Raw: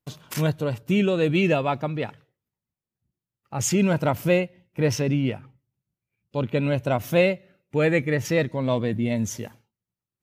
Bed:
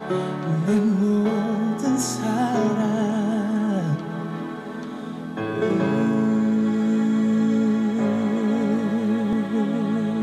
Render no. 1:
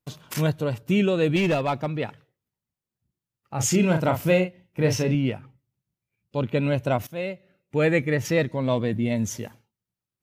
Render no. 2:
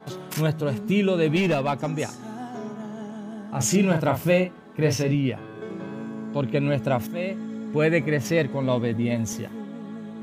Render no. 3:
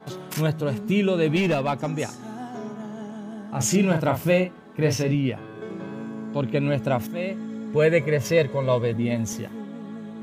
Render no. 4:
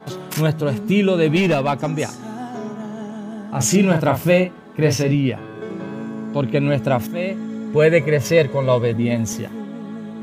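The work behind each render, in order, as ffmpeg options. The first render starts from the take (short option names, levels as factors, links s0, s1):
-filter_complex "[0:a]asettb=1/sr,asplit=3[s0][s1][s2];[s0]atrim=end=1.364[s3];[s1]atrim=start=1.36:end=2,asetpts=PTS-STARTPTS,afade=t=in:d=0.004:c=qsin,afade=t=out:st=0.636:d=0.004:c=qsin,volume=7.94,asoftclip=hard,volume=0.126[s4];[s2]atrim=start=1.996[s5];[s3][s4]acrossfade=d=0.004:c1=hsin:c2=qsin[s6];[s6][s5]acrossfade=d=0.004:c1=qsin:c2=hsin,asettb=1/sr,asplit=3[s7][s8][s9];[s7]atrim=end=3.544[s10];[s8]atrim=start=3.54:end=5.15,asetpts=PTS-STARTPTS,afade=t=in:d=0.004:c=qsin,afade=t=out:st=1.606:d=0.004:c=qsin,asplit=2[s11][s12];[s12]adelay=38,volume=0.447[s13];[s11][s13]amix=inputs=2:normalize=0,atrim=end_sample=71001[s14];[s9]atrim=start=5.146[s15];[s10][s14]acrossfade=d=0.004:c1=hsin:c2=qsin[s16];[s16][s15]acrossfade=d=0.004:c1=qsin:c2=hsin,asplit=2[s17][s18];[s17]atrim=end=7.07,asetpts=PTS-STARTPTS,afade=t=out:st=7.066:d=0.004:c=hsin:silence=0.105925[s19];[s18]atrim=start=7.07,asetpts=PTS-STARTPTS,afade=t=in:d=0.76:silence=0.105925[s20];[s19][s20]concat=n=2:v=0:a=1"
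-filter_complex "[1:a]volume=0.211[s0];[0:a][s0]amix=inputs=2:normalize=0"
-filter_complex "[0:a]asettb=1/sr,asplit=3[s0][s1][s2];[s0]atrim=end=7.754[s3];[s1]atrim=start=7.75:end=8.93,asetpts=PTS-STARTPTS,afade=t=in:d=0.004:c=qsin,afade=t=out:st=1.176:d=0.004:c=qsin,aecho=1:1:1.9:0.65,atrim=end_sample=52038[s4];[s2]atrim=start=8.926[s5];[s3][s4]acrossfade=d=0.004:c1=hsin:c2=qsin[s6];[s6][s5]acrossfade=d=0.004:c1=qsin:c2=hsin"
-af "volume=1.78"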